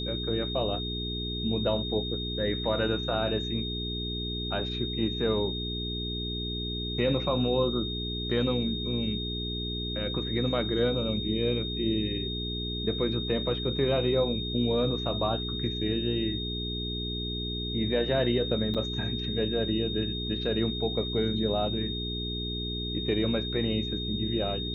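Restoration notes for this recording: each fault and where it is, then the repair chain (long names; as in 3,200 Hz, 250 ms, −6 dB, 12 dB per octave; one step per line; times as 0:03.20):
mains hum 60 Hz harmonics 7 −35 dBFS
whistle 3,700 Hz −34 dBFS
0:18.74–0:18.75: drop-out 6.7 ms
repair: hum removal 60 Hz, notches 7
notch filter 3,700 Hz, Q 30
repair the gap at 0:18.74, 6.7 ms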